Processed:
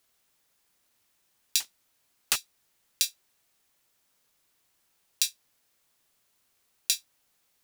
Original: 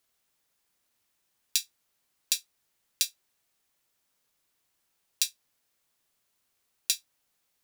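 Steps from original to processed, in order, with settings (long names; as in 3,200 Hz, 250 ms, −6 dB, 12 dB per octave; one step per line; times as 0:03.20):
0:01.60–0:02.36: sub-harmonics by changed cycles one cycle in 3, inverted
in parallel at −2.5 dB: compressor whose output falls as the input rises −28 dBFS
on the sum: level −2 dB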